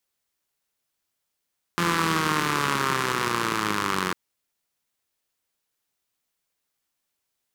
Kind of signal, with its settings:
pulse-train model of a four-cylinder engine, changing speed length 2.35 s, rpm 5,200, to 2,700, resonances 190/340/1,100 Hz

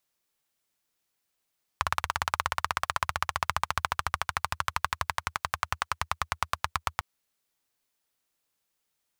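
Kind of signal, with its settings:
pulse-train model of a single-cylinder engine, changing speed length 5.20 s, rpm 2,100, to 1,000, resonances 81/1,100 Hz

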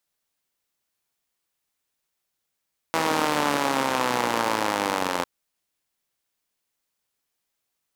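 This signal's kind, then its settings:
pulse-train model of a four-cylinder engine, changing speed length 2.30 s, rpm 4,900, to 2,600, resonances 300/520/850 Hz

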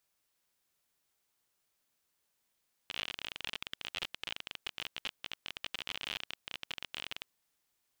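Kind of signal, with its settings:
Geiger counter clicks 37 per second −21.5 dBFS 4.36 s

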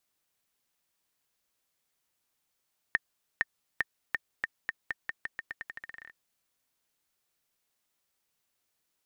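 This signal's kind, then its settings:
bouncing ball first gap 0.46 s, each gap 0.86, 1,820 Hz, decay 30 ms −11.5 dBFS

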